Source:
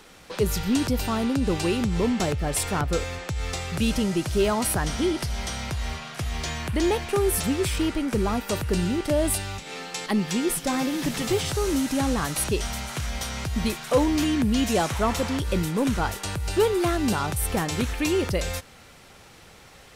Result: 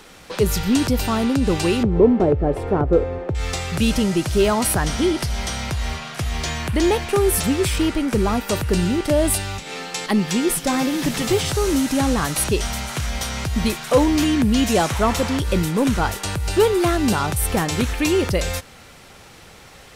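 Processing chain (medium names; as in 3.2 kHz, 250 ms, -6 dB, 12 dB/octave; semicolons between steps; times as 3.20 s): 1.83–3.35 s: FFT filter 200 Hz 0 dB, 390 Hz +9 dB, 7.1 kHz -28 dB; trim +5 dB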